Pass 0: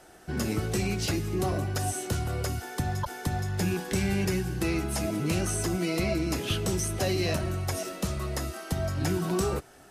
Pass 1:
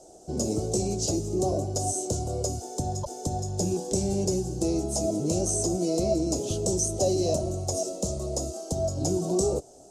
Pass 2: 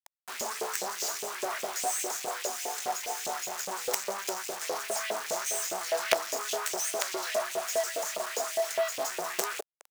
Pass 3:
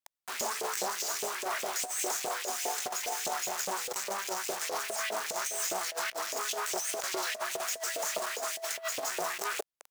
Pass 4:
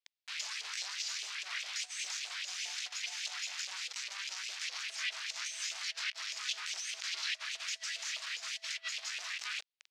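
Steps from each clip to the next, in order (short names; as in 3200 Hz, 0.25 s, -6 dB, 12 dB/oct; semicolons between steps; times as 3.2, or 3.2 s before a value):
EQ curve 180 Hz 0 dB, 630 Hz +9 dB, 1800 Hz -27 dB, 6900 Hz +12 dB, 13000 Hz -10 dB; gain -1.5 dB
comb 4.6 ms, depth 70%; companded quantiser 2-bit; LFO high-pass saw up 4.9 Hz 490–2900 Hz; gain -5.5 dB
negative-ratio compressor -33 dBFS, ratio -0.5
Butterworth band-pass 3300 Hz, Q 1.1; gain +2.5 dB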